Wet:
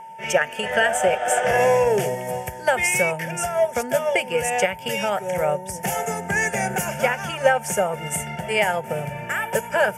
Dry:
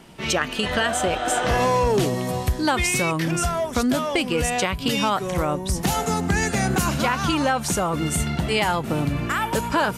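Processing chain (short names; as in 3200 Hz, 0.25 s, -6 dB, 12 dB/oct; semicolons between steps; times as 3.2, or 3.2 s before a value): Chebyshev high-pass 220 Hz, order 2; fixed phaser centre 1100 Hz, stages 6; whine 900 Hz -34 dBFS; reverb, pre-delay 3 ms, DRR 18 dB; upward expander 1.5:1, over -34 dBFS; gain +7 dB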